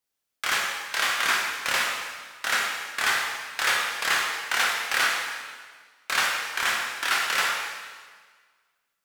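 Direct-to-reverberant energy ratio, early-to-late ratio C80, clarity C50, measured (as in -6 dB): -2.0 dB, 3.0 dB, 1.0 dB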